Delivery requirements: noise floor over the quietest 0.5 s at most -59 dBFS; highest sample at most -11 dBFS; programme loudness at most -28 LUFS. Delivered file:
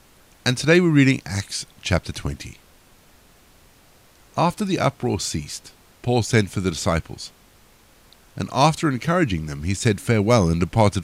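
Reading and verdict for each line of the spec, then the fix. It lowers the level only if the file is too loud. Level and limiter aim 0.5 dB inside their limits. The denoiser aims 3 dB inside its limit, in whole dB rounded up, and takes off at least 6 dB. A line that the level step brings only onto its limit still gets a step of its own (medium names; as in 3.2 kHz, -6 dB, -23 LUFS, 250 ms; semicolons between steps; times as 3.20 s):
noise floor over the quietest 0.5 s -53 dBFS: fail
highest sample -2.0 dBFS: fail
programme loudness -21.5 LUFS: fail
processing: trim -7 dB; peak limiter -11.5 dBFS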